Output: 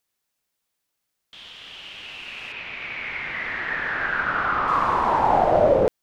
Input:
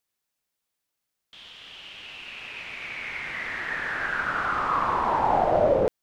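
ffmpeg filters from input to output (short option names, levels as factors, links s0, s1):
-filter_complex "[0:a]asettb=1/sr,asplit=3[s0][s1][s2];[s0]atrim=end=2.524[s3];[s1]atrim=start=2.52:end=4.68,asetpts=PTS-STARTPTS,afade=t=in:d=0.004:c=qsin,afade=t=out:st=2.156:d=0.004:c=qsin,lowpass=4000[s4];[s2]atrim=start=4.676[s5];[s3][s4]acrossfade=d=0.004:c1=hsin:c2=qsin[s6];[s6][s5]acrossfade=d=0.004:c1=qsin:c2=hsin,volume=1.5"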